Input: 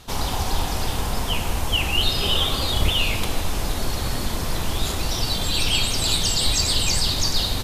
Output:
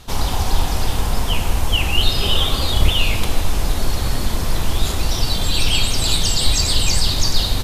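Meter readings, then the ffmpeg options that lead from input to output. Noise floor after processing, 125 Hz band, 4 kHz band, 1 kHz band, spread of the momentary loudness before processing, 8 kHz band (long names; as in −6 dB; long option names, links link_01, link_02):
−22 dBFS, +5.0 dB, +2.0 dB, +2.0 dB, 7 LU, +2.0 dB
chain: -af "lowshelf=frequency=75:gain=6.5,volume=2dB"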